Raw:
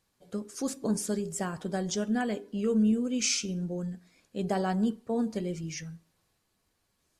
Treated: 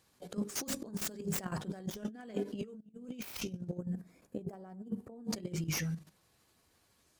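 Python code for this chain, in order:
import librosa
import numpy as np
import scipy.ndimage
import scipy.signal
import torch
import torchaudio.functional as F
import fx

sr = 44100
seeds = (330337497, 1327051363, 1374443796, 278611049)

y = fx.tracing_dist(x, sr, depth_ms=0.24)
y = y * (1.0 - 0.53 / 2.0 + 0.53 / 2.0 * np.cos(2.0 * np.pi * 12.0 * (np.arange(len(y)) / sr)))
y = fx.level_steps(y, sr, step_db=12)
y = scipy.signal.sosfilt(scipy.signal.butter(2, 45.0, 'highpass', fs=sr, output='sos'), y)
y = fx.hum_notches(y, sr, base_hz=50, count=4)
y = fx.over_compress(y, sr, threshold_db=-45.0, ratio=-0.5)
y = fx.peak_eq(y, sr, hz=3900.0, db=-15.0, octaves=2.5, at=(3.78, 5.25))
y = F.gain(torch.from_numpy(y), 6.5).numpy()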